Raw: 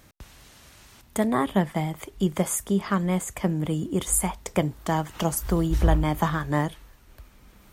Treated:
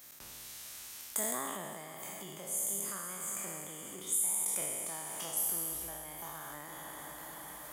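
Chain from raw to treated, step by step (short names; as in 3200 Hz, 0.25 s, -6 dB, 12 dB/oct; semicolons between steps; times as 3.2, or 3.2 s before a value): spectral trails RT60 2.14 s; diffused feedback echo 0.499 s, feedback 47%, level -11.5 dB; compressor 6:1, threshold -35 dBFS, peak gain reduction 20.5 dB; RIAA curve recording; sustainer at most 22 dB/s; gain -7.5 dB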